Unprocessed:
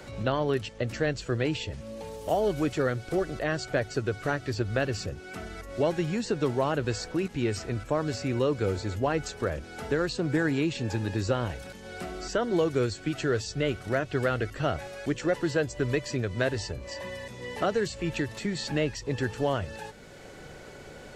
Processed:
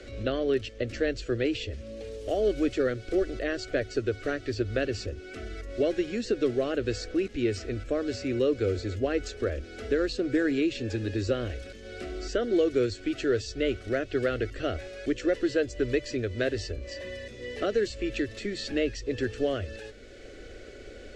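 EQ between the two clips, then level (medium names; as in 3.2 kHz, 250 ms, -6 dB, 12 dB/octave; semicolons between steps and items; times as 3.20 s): distance through air 82 m; bass shelf 68 Hz +7 dB; static phaser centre 380 Hz, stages 4; +2.5 dB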